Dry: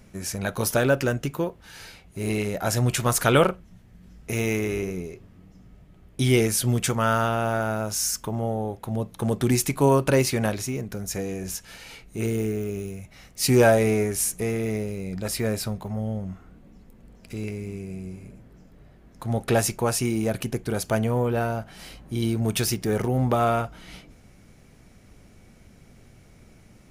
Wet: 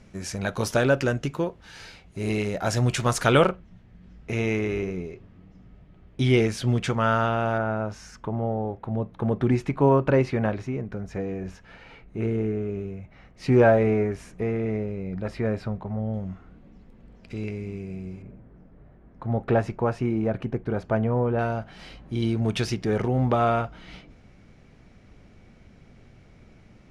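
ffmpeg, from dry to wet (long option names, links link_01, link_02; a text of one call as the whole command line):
ffmpeg -i in.wav -af "asetnsamples=nb_out_samples=441:pad=0,asendcmd='3.51 lowpass f 3700;7.58 lowpass f 1900;16.14 lowpass f 4100;18.22 lowpass f 1600;21.39 lowpass f 4100',lowpass=6400" out.wav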